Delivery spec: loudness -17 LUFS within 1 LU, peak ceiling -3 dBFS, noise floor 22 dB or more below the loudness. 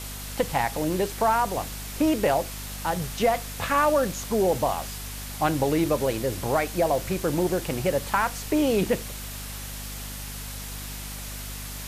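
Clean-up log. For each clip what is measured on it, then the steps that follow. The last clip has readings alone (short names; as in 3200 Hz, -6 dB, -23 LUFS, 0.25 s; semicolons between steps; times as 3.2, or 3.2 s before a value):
hum 50 Hz; harmonics up to 250 Hz; hum level -36 dBFS; noise floor -36 dBFS; noise floor target -49 dBFS; loudness -26.5 LUFS; peak -8.5 dBFS; loudness target -17.0 LUFS
-> notches 50/100/150/200/250 Hz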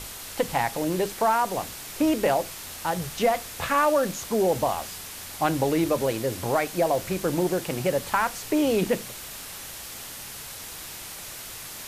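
hum none; noise floor -39 dBFS; noise floor target -49 dBFS
-> denoiser 10 dB, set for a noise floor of -39 dBFS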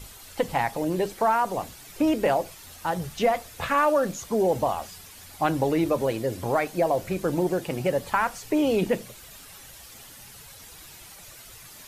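noise floor -47 dBFS; noise floor target -48 dBFS
-> denoiser 6 dB, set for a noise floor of -47 dBFS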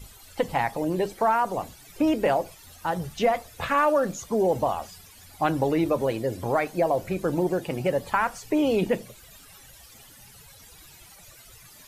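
noise floor -50 dBFS; loudness -25.5 LUFS; peak -9.0 dBFS; loudness target -17.0 LUFS
-> gain +8.5 dB; limiter -3 dBFS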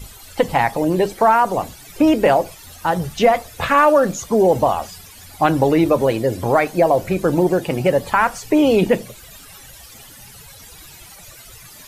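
loudness -17.5 LUFS; peak -3.0 dBFS; noise floor -42 dBFS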